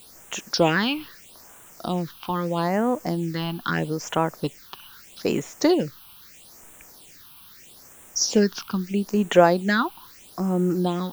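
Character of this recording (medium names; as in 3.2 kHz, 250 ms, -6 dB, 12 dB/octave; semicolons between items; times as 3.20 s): a quantiser's noise floor 8-bit, dither triangular; phasing stages 6, 0.78 Hz, lowest notch 500–4600 Hz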